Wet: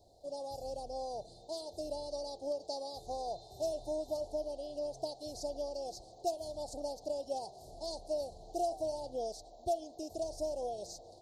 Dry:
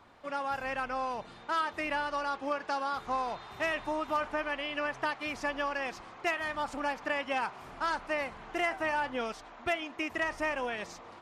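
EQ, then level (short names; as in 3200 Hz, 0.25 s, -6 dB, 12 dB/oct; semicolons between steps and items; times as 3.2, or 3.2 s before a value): Chebyshev band-stop 710–4200 Hz, order 4; bell 230 Hz -15 dB 1.2 oct; +3.0 dB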